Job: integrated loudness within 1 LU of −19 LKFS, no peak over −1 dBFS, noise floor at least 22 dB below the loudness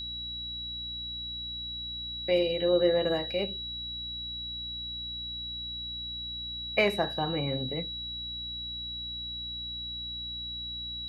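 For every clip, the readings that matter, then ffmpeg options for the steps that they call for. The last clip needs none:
mains hum 60 Hz; hum harmonics up to 300 Hz; level of the hum −45 dBFS; interfering tone 3,900 Hz; level of the tone −35 dBFS; integrated loudness −31.5 LKFS; sample peak −11.0 dBFS; target loudness −19.0 LKFS
→ -af "bandreject=frequency=60:width_type=h:width=6,bandreject=frequency=120:width_type=h:width=6,bandreject=frequency=180:width_type=h:width=6,bandreject=frequency=240:width_type=h:width=6,bandreject=frequency=300:width_type=h:width=6"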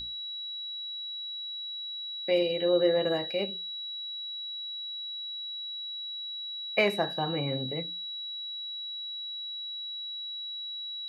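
mains hum none found; interfering tone 3,900 Hz; level of the tone −35 dBFS
→ -af "bandreject=frequency=3900:width=30"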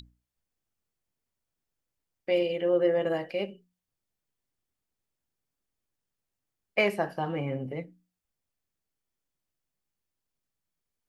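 interfering tone none found; integrated loudness −29.0 LKFS; sample peak −12.0 dBFS; target loudness −19.0 LKFS
→ -af "volume=10dB"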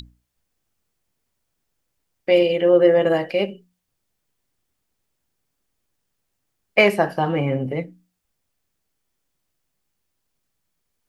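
integrated loudness −19.0 LKFS; sample peak −2.0 dBFS; background noise floor −77 dBFS

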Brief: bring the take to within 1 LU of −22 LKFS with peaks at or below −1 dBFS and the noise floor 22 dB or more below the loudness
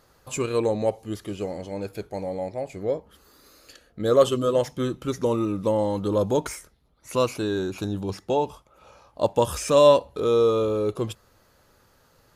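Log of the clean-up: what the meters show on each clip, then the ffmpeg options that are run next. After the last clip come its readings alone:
integrated loudness −24.5 LKFS; sample peak −5.0 dBFS; target loudness −22.0 LKFS
→ -af "volume=2.5dB"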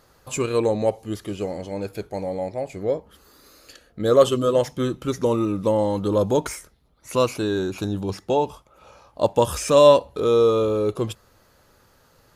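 integrated loudness −22.0 LKFS; sample peak −2.5 dBFS; background noise floor −58 dBFS

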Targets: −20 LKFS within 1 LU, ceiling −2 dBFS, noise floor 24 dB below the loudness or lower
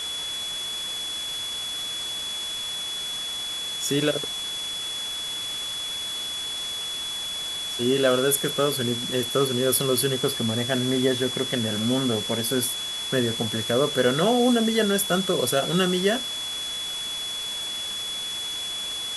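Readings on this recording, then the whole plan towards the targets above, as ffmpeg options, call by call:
interfering tone 3,400 Hz; level of the tone −29 dBFS; background noise floor −31 dBFS; target noise floor −49 dBFS; integrated loudness −24.5 LKFS; sample peak −8.0 dBFS; target loudness −20.0 LKFS
→ -af "bandreject=frequency=3400:width=30"
-af "afftdn=noise_reduction=18:noise_floor=-31"
-af "volume=4.5dB"

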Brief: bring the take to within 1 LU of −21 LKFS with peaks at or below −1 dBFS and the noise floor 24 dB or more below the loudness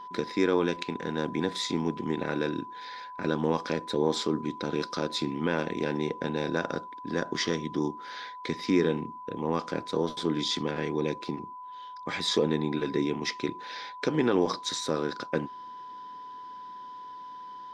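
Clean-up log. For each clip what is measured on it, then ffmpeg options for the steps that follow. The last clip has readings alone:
interfering tone 1,000 Hz; level of the tone −40 dBFS; integrated loudness −30.0 LKFS; sample peak −11.0 dBFS; target loudness −21.0 LKFS
→ -af "bandreject=frequency=1000:width=30"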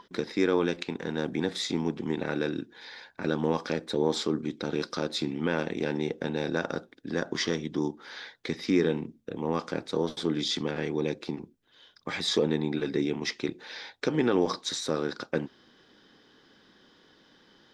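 interfering tone none found; integrated loudness −30.0 LKFS; sample peak −11.0 dBFS; target loudness −21.0 LKFS
→ -af "volume=9dB"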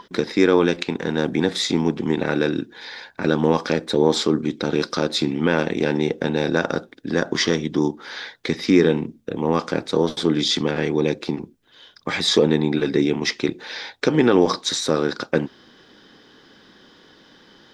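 integrated loudness −21.0 LKFS; sample peak −2.0 dBFS; background noise floor −53 dBFS

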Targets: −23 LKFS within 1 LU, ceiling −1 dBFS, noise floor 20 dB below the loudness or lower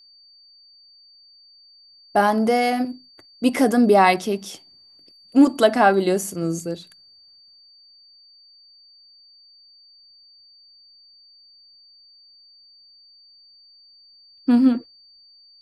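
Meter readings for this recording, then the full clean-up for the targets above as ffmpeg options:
interfering tone 4,600 Hz; level of the tone −49 dBFS; integrated loudness −19.5 LKFS; sample peak −3.5 dBFS; target loudness −23.0 LKFS
→ -af "bandreject=frequency=4600:width=30"
-af "volume=-3.5dB"

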